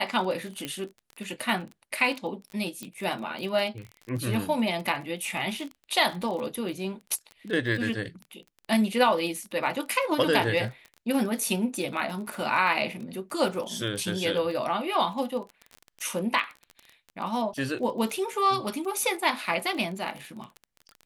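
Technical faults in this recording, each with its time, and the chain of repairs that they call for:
crackle 25/s -33 dBFS
0.65 pop -17 dBFS
2.83 pop -22 dBFS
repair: de-click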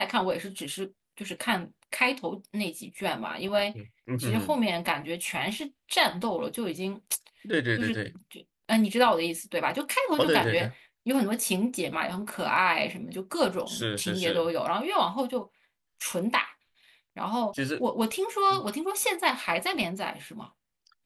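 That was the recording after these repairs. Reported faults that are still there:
none

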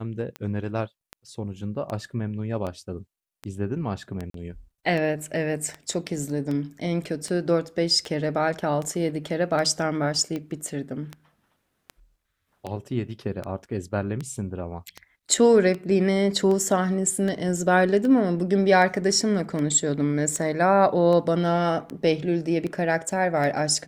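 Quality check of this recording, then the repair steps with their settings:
tick 78 rpm -19 dBFS
4.3–4.34 gap 43 ms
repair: de-click; interpolate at 4.3, 43 ms

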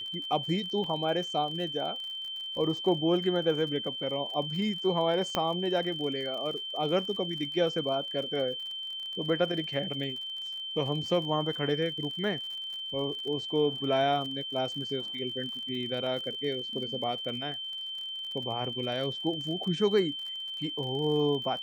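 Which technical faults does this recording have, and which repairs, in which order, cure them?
crackle 48/s -38 dBFS
tone 3100 Hz -35 dBFS
0.84 gap 2.5 ms
5.35 pop -13 dBFS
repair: de-click; notch 3100 Hz, Q 30; interpolate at 0.84, 2.5 ms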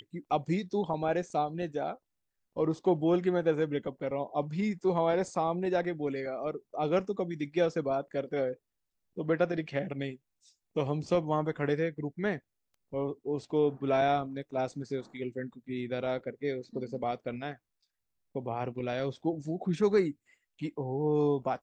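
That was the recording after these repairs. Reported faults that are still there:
none

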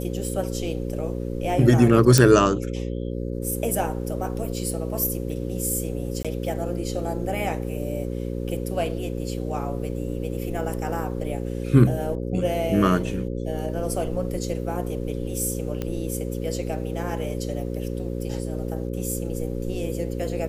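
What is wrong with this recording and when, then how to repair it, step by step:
buzz 60 Hz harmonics 9 -29 dBFS
2.18 pop -1 dBFS
6.23–6.25 gap 16 ms
15.82 pop -15 dBFS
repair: de-click; de-hum 60 Hz, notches 9; interpolate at 6.23, 16 ms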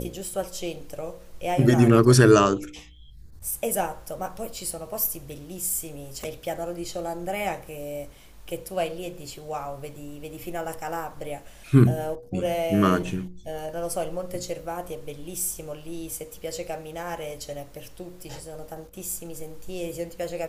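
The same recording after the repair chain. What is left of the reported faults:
none

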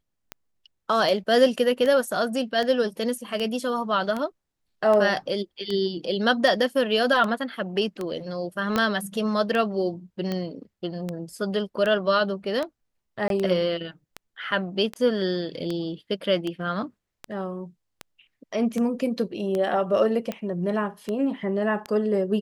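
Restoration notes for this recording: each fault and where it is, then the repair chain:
tick 78 rpm -16 dBFS
8.76 pop -9 dBFS
13.28–13.3 gap 22 ms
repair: de-click; interpolate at 13.28, 22 ms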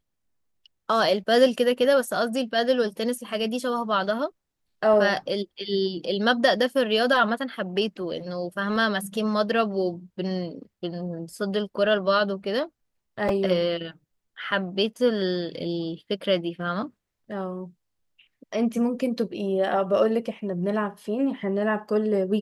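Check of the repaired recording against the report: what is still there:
8.76 pop

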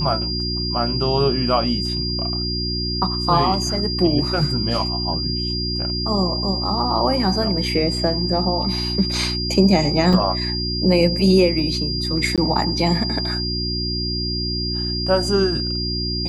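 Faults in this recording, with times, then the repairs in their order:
hum 60 Hz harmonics 6 -26 dBFS
tone 4800 Hz -24 dBFS
10.13 gap 3.2 ms
12.36–12.38 gap 17 ms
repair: de-hum 60 Hz, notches 6; notch 4800 Hz, Q 30; interpolate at 10.13, 3.2 ms; interpolate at 12.36, 17 ms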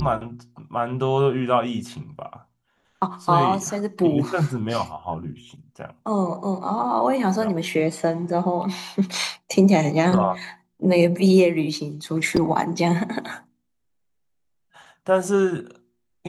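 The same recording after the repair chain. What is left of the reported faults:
none

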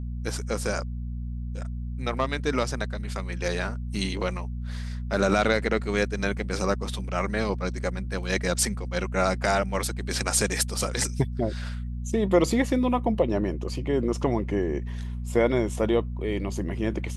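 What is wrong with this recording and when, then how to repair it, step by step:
hum 60 Hz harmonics 4 -32 dBFS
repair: de-hum 60 Hz, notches 4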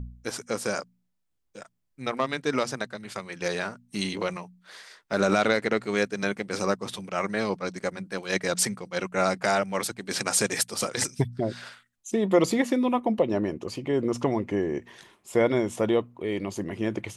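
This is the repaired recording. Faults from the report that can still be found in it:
none

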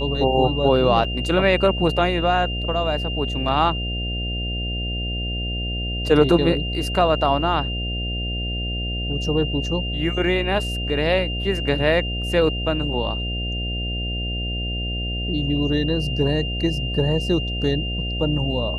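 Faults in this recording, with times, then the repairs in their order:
buzz 60 Hz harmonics 12 -27 dBFS
tone 2800 Hz -28 dBFS
1.04 gap 5 ms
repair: notch 2800 Hz, Q 30; de-hum 60 Hz, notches 12; interpolate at 1.04, 5 ms

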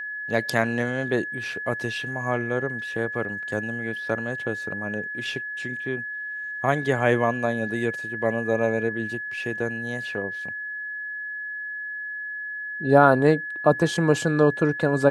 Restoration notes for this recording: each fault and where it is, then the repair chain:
tone 1700 Hz -30 dBFS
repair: notch 1700 Hz, Q 30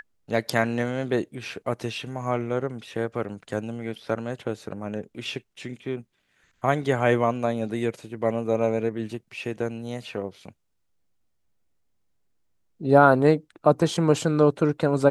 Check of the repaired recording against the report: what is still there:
none

